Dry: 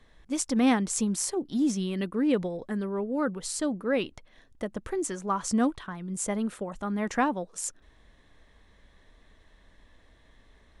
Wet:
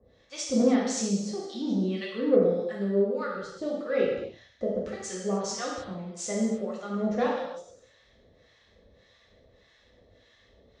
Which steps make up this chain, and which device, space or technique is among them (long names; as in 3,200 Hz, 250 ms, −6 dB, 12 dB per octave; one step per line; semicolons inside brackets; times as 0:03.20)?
guitar amplifier with harmonic tremolo (two-band tremolo in antiphase 1.7 Hz, depth 100%, crossover 850 Hz; soft clipping −22 dBFS, distortion −15 dB; loudspeaker in its box 85–4,000 Hz, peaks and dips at 170 Hz −7 dB, 290 Hz −8 dB, 510 Hz +8 dB, 950 Hz −10 dB, 1,600 Hz −5 dB)
high shelf with overshoot 4,300 Hz +12.5 dB, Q 1.5
reverb whose tail is shaped and stops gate 340 ms falling, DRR −5 dB
level +2 dB